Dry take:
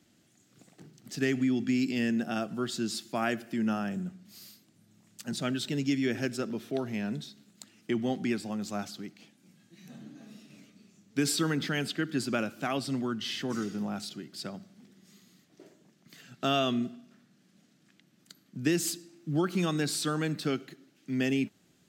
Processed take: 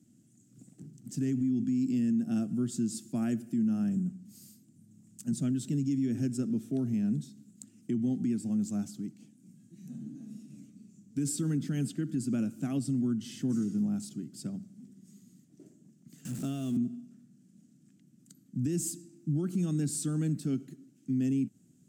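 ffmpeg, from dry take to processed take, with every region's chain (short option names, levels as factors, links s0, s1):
-filter_complex "[0:a]asettb=1/sr,asplit=3[s0][s1][s2];[s0]atrim=end=16.254[s3];[s1]atrim=start=16.25:end=16.77,asetpts=PTS-STARTPTS,afade=t=in:d=0.004:c=qsin,afade=t=out:st=0.516:d=0.004:c=qsin,aeval=exprs='val(0)+0.5*0.0224*sgn(val(0))':c=same,acrossover=split=280|3000[s4][s5][s6];[s4]acompressor=threshold=0.00708:ratio=4[s7];[s5]acompressor=threshold=0.02:ratio=4[s8];[s6]acompressor=threshold=0.00794:ratio=4[s9];[s7][s8][s9]amix=inputs=3:normalize=0[s10];[s2]atrim=start=16.766[s11];[s3][s10]acrossfade=d=0.004:c1=hsin:c2=qsin[s12];[s12][s11]acrossfade=d=0.004:c1=qsin:c2=hsin,equalizer=f=125:t=o:w=1:g=12,equalizer=f=250:t=o:w=1:g=12,equalizer=f=500:t=o:w=1:g=-4,equalizer=f=1000:t=o:w=1:g=-9,equalizer=f=2000:t=o:w=1:g=-6,equalizer=f=4000:t=o:w=1:g=-9,equalizer=f=8000:t=o:w=1:g=11,alimiter=limit=0.158:level=0:latency=1:release=130,volume=0.447"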